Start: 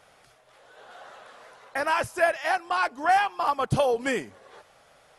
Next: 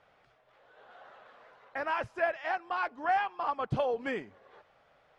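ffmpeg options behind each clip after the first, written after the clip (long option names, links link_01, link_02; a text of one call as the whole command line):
ffmpeg -i in.wav -af "lowpass=3000,volume=-7dB" out.wav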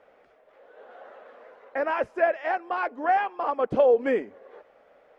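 ffmpeg -i in.wav -af "equalizer=frequency=125:width_type=o:width=1:gain=-10,equalizer=frequency=250:width_type=o:width=1:gain=8,equalizer=frequency=500:width_type=o:width=1:gain=12,equalizer=frequency=2000:width_type=o:width=1:gain=4,equalizer=frequency=4000:width_type=o:width=1:gain=-4" out.wav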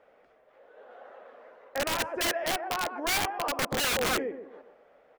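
ffmpeg -i in.wav -filter_complex "[0:a]asplit=2[link_01][link_02];[link_02]adelay=128,lowpass=frequency=1300:poles=1,volume=-7dB,asplit=2[link_03][link_04];[link_04]adelay=128,lowpass=frequency=1300:poles=1,volume=0.37,asplit=2[link_05][link_06];[link_06]adelay=128,lowpass=frequency=1300:poles=1,volume=0.37,asplit=2[link_07][link_08];[link_08]adelay=128,lowpass=frequency=1300:poles=1,volume=0.37[link_09];[link_01][link_03][link_05][link_07][link_09]amix=inputs=5:normalize=0,aeval=exprs='(mod(9.44*val(0)+1,2)-1)/9.44':channel_layout=same,volume=-3dB" out.wav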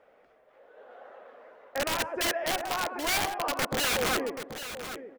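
ffmpeg -i in.wav -af "aecho=1:1:781:0.282" out.wav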